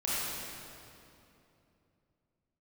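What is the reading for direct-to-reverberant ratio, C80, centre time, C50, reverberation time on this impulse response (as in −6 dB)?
−9.5 dB, −3.0 dB, 185 ms, −6.0 dB, 2.9 s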